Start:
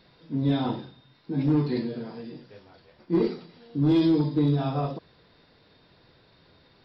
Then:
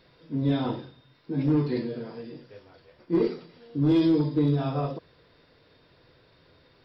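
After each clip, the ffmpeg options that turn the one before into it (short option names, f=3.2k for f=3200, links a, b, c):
-af "equalizer=f=200:t=o:w=0.33:g=-7,equalizer=f=500:t=o:w=0.33:g=3,equalizer=f=800:t=o:w=0.33:g=-4,equalizer=f=4k:t=o:w=0.33:g=-4"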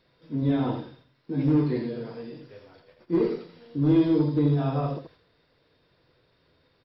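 -filter_complex "[0:a]agate=range=-7dB:threshold=-55dB:ratio=16:detection=peak,acrossover=split=2600[a][b];[b]acompressor=threshold=-52dB:ratio=4:attack=1:release=60[c];[a][c]amix=inputs=2:normalize=0,asplit=2[d][e];[e]aecho=0:1:82:0.422[f];[d][f]amix=inputs=2:normalize=0"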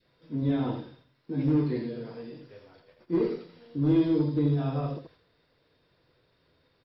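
-af "adynamicequalizer=threshold=0.01:dfrequency=890:dqfactor=1:tfrequency=890:tqfactor=1:attack=5:release=100:ratio=0.375:range=2:mode=cutabove:tftype=bell,volume=-2.5dB"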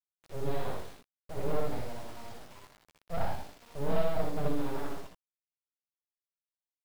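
-af "aresample=11025,aeval=exprs='abs(val(0))':c=same,aresample=44100,acrusher=bits=7:mix=0:aa=0.000001,aecho=1:1:62|79:0.631|0.531,volume=-5.5dB"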